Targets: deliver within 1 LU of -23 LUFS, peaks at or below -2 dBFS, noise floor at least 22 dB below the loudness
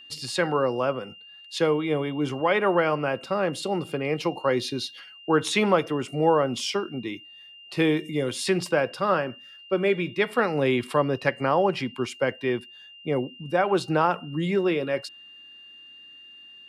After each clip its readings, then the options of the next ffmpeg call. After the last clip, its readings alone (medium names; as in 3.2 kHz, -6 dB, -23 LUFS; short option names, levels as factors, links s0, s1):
steady tone 2.8 kHz; tone level -45 dBFS; loudness -25.5 LUFS; peak level -7.5 dBFS; loudness target -23.0 LUFS
-> -af "bandreject=f=2800:w=30"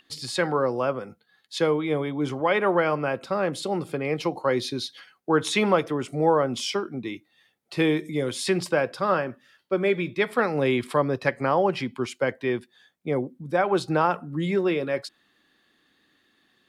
steady tone not found; loudness -25.5 LUFS; peak level -7.5 dBFS; loudness target -23.0 LUFS
-> -af "volume=1.33"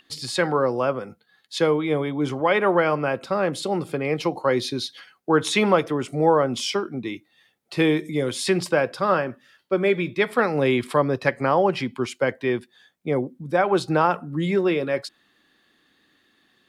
loudness -23.0 LUFS; peak level -5.0 dBFS; noise floor -66 dBFS